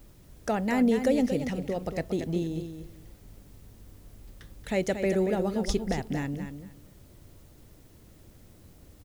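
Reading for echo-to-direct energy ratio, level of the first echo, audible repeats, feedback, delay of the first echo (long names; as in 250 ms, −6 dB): −8.5 dB, −8.5 dB, 2, 19%, 231 ms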